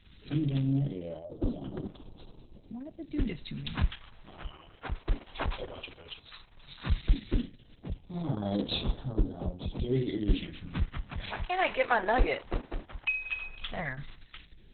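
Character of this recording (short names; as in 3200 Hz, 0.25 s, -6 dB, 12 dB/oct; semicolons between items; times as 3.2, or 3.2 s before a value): tremolo triangle 0.6 Hz, depth 70%; phasing stages 2, 0.14 Hz, lowest notch 170–2000 Hz; Opus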